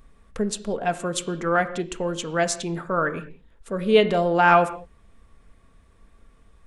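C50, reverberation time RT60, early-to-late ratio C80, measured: 14.5 dB, no single decay rate, 15.5 dB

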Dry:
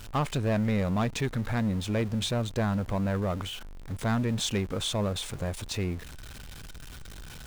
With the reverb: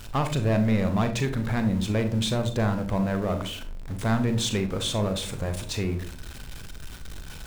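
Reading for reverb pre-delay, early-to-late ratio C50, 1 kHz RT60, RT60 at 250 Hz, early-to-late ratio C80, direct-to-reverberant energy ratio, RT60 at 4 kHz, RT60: 36 ms, 10.5 dB, 0.40 s, 0.80 s, 16.0 dB, 7.0 dB, 0.25 s, 0.55 s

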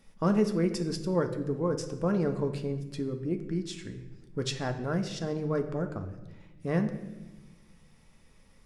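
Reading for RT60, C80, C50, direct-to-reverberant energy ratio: 1.1 s, 12.0 dB, 10.0 dB, 5.5 dB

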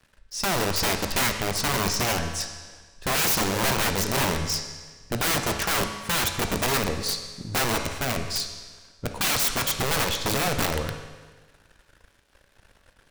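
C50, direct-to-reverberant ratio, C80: 7.0 dB, 5.0 dB, 9.0 dB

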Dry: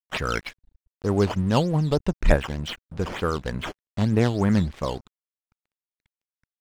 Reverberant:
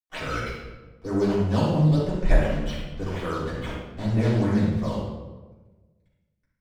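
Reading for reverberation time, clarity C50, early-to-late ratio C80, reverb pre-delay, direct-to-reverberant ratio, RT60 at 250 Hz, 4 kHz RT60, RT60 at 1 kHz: 1.3 s, -0.5 dB, 2.5 dB, 3 ms, -10.0 dB, 1.5 s, 0.80 s, 1.2 s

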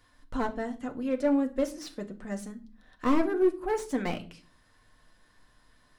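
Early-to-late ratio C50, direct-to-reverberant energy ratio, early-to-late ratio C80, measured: 16.5 dB, 4.0 dB, 21.5 dB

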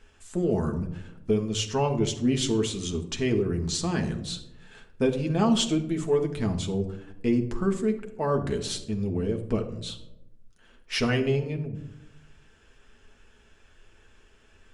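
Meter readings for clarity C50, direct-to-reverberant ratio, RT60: 11.0 dB, 3.0 dB, 0.85 s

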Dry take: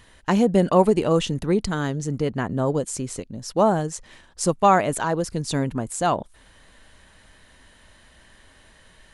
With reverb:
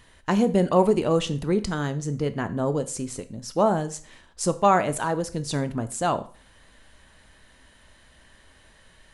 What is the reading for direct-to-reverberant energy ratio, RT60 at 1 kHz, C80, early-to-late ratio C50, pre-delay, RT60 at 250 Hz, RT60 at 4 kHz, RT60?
11.0 dB, 0.45 s, 20.0 dB, 16.5 dB, 7 ms, 0.50 s, 0.40 s, 0.45 s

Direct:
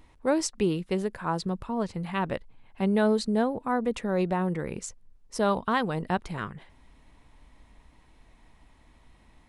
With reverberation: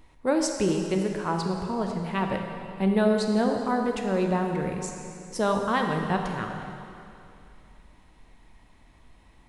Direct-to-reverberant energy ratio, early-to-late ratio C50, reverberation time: 2.5 dB, 4.0 dB, 2.7 s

